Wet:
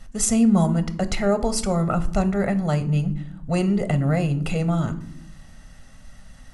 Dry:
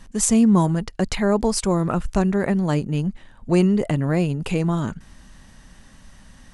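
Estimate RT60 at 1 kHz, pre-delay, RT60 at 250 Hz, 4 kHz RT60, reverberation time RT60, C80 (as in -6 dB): 0.60 s, 4 ms, 1.2 s, 0.40 s, 0.70 s, 19.5 dB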